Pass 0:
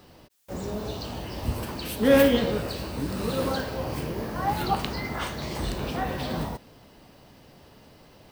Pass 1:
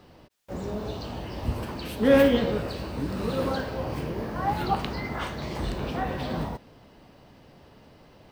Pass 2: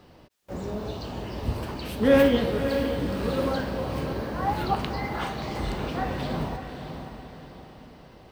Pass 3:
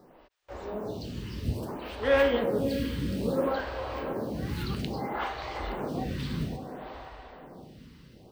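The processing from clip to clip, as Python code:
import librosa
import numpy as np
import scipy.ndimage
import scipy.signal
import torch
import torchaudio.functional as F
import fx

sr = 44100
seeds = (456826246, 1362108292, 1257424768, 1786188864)

y1 = fx.high_shelf(x, sr, hz=5400.0, db=-11.0)
y2 = fx.echo_diffused(y1, sr, ms=577, feedback_pct=44, wet_db=-8.0)
y3 = fx.stagger_phaser(y2, sr, hz=0.6)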